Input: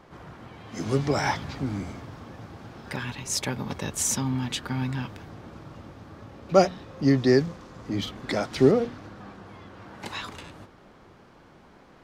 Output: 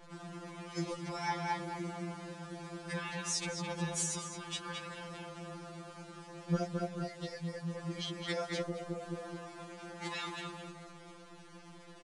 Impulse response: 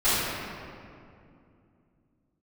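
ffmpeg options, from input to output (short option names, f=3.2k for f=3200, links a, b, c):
-filter_complex "[0:a]asoftclip=type=tanh:threshold=-8.5dB,asplit=2[a][b];[b]adelay=215,lowpass=f=2.7k:p=1,volume=-3dB,asplit=2[c][d];[d]adelay=215,lowpass=f=2.7k:p=1,volume=0.34,asplit=2[e][f];[f]adelay=215,lowpass=f=2.7k:p=1,volume=0.34,asplit=2[g][h];[h]adelay=215,lowpass=f=2.7k:p=1,volume=0.34[i];[a][c][e][g][i]amix=inputs=5:normalize=0,acompressor=threshold=-27dB:ratio=20,asettb=1/sr,asplit=3[j][k][l];[j]atrim=end=5.194[m];[k]atrim=start=5.19:end=6.32,asetpts=PTS-STARTPTS,afade=t=in:d=0.004:c=qsin,afade=t=out:st=1.126:d=0.004:c=qsin,bandreject=f=60:t=h:w=6,bandreject=f=120:t=h:w=6,bandreject=f=180:t=h:w=6,bandreject=f=240:t=h:w=6,bandreject=f=300:t=h:w=6,bandreject=f=360:t=h:w=6,bandreject=f=420:t=h:w=6,bandreject=f=480:t=h:w=6,bandreject=f=540:t=h:w=6[n];[l]atrim=start=6.316[o];[m][n]acrossfade=d=0.004:c1=hsin:c2=qsin[p];[p][o]acrossfade=d=0.004:c1=qsin:c2=hsin,acrusher=bits=9:dc=4:mix=0:aa=0.000001,aresample=22050,aresample=44100,afftfilt=real='re*2.83*eq(mod(b,8),0)':imag='im*2.83*eq(mod(b,8),0)':win_size=2048:overlap=0.75,volume=-1.5dB"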